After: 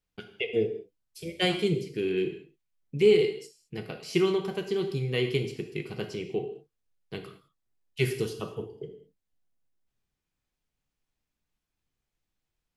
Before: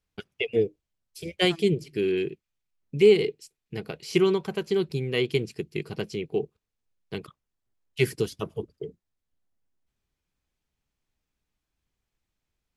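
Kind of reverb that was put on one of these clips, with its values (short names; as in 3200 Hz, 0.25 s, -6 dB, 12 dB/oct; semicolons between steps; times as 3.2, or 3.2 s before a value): non-linear reverb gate 0.24 s falling, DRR 4.5 dB; gain -3.5 dB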